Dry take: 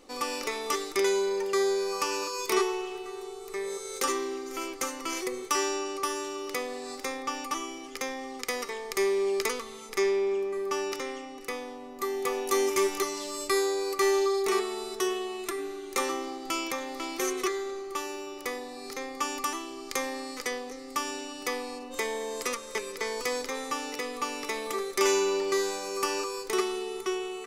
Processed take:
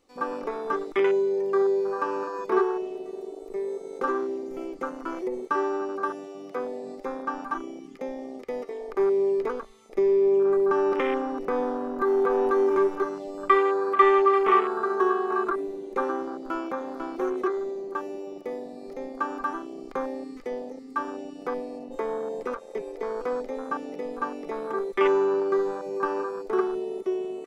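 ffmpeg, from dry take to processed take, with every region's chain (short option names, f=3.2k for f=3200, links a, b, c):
-filter_complex "[0:a]asettb=1/sr,asplit=3[a][b][c];[a]atrim=end=6.104[d];[b]atrim=start=6.1:end=6.55,asetpts=PTS-STARTPTS,afade=t=in:d=0.004:c=qsin,afade=t=out:st=0.446:d=0.004:c=qsin,highpass=f=140:p=1,equalizer=f=470:w=2.4:g=-10[e];[c]atrim=start=6.546[f];[d][e]acrossfade=d=0.004:c1=hsin:c2=qsin[g];[g][f]acrossfade=d=0.004:c1=qsin:c2=hsin,asettb=1/sr,asplit=3[h][i][j];[h]atrim=end=9.984[k];[i]atrim=start=9.98:end=12.78,asetpts=PTS-STARTPTS,afade=t=in:d=0.004:c=qsin,afade=t=out:st=2.796:d=0.004:c=qsin,acompressor=threshold=-31dB:ratio=4:attack=3.2:release=140:knee=1:detection=peak,aeval=exprs='0.133*sin(PI/2*1.78*val(0)/0.133)':c=same[l];[j]atrim=start=12.776[m];[k][l]acrossfade=d=0.004:c1=hsin:c2=qsin[n];[n][m]acrossfade=d=0.004:c1=qsin:c2=hsin,asettb=1/sr,asplit=3[o][p][q];[o]atrim=end=13.434[r];[p]atrim=start=13.43:end=15.56,asetpts=PTS-STARTPTS,afade=t=in:d=0.004:c=qsin,afade=t=out:st=2.126:d=0.004:c=qsin,equalizer=f=1.2k:t=o:w=0.59:g=10,aecho=1:1:839:0.335,atrim=end_sample=93933[s];[q]atrim=start=15.556[t];[r][s]acrossfade=d=0.004:c1=hsin:c2=qsin[u];[u][t]acrossfade=d=0.004:c1=qsin:c2=hsin,acrossover=split=3200[v][w];[w]acompressor=threshold=-49dB:ratio=4:attack=1:release=60[x];[v][x]amix=inputs=2:normalize=0,equalizer=f=93:w=4:g=13,afwtdn=0.0282,volume=4dB"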